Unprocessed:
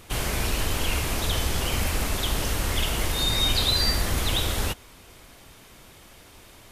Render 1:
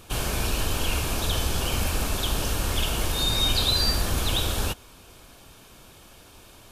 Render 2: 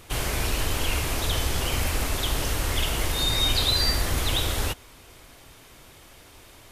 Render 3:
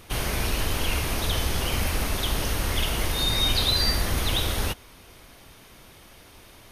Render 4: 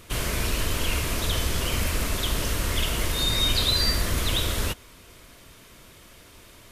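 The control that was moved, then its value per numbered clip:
notch filter, centre frequency: 2,000, 200, 7,500, 800 Hertz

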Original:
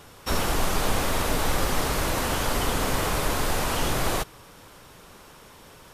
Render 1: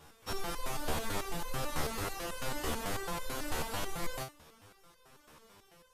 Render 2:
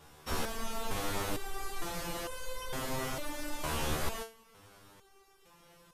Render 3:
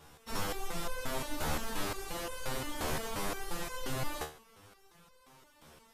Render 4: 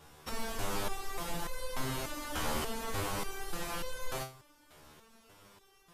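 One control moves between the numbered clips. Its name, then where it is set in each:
step-sequenced resonator, speed: 9.1, 2.2, 5.7, 3.4 Hertz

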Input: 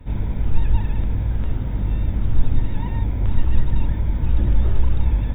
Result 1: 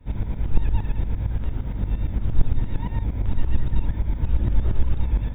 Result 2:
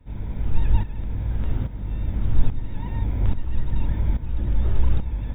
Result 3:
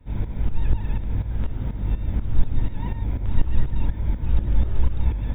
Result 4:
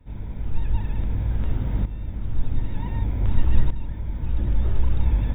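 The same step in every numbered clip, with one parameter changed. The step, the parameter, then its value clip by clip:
shaped tremolo, speed: 8.7, 1.2, 4.1, 0.54 Hertz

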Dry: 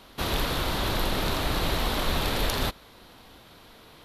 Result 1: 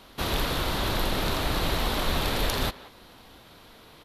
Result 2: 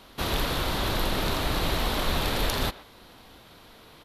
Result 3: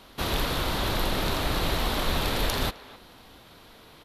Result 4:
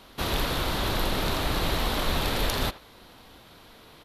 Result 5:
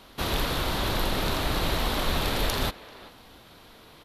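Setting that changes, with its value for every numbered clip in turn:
far-end echo of a speakerphone, delay time: 180, 120, 260, 80, 390 milliseconds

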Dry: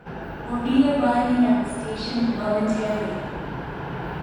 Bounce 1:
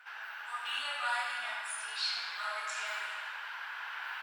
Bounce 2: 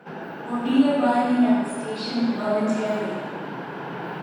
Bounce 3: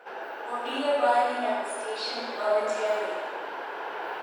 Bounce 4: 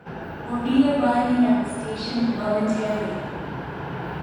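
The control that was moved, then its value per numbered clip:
high-pass filter, corner frequency: 1,300, 170, 450, 60 Hertz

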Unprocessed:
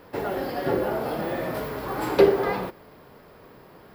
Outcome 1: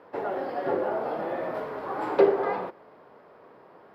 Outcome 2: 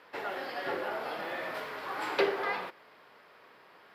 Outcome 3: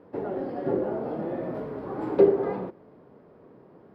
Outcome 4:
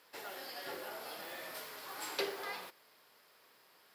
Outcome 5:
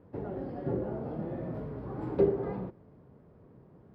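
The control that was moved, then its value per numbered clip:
resonant band-pass, frequency: 760, 2,300, 280, 7,200, 110 Hertz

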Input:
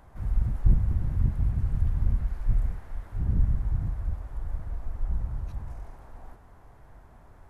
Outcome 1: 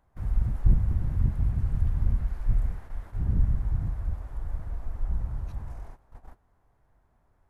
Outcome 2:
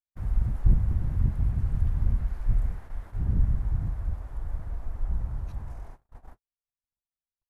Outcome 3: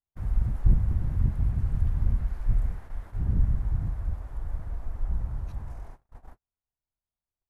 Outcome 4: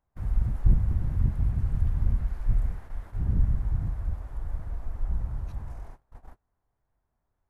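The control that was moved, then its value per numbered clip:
noise gate, range: −15, −58, −46, −27 decibels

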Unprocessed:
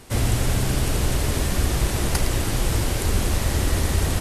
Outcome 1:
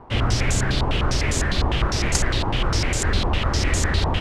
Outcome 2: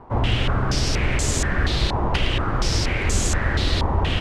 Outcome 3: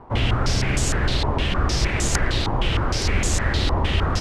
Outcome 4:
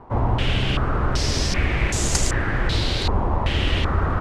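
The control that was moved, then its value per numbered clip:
low-pass on a step sequencer, speed: 9.9, 4.2, 6.5, 2.6 Hertz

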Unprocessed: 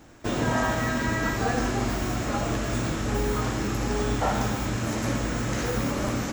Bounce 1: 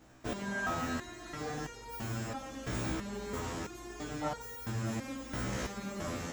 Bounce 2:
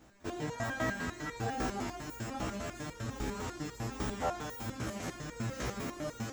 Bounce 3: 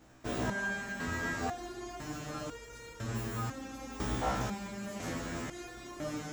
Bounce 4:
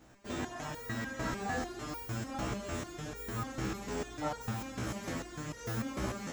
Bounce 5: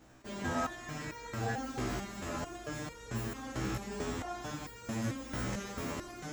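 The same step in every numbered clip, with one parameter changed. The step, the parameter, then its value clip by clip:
step-sequenced resonator, speed: 3, 10, 2, 6.7, 4.5 Hertz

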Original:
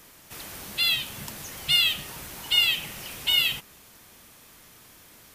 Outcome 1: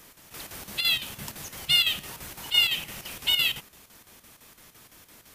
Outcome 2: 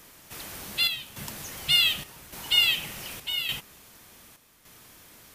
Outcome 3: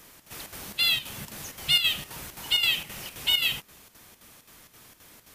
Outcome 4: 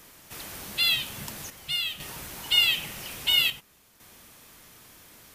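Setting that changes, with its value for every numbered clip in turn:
square-wave tremolo, speed: 5.9, 0.86, 3.8, 0.5 Hertz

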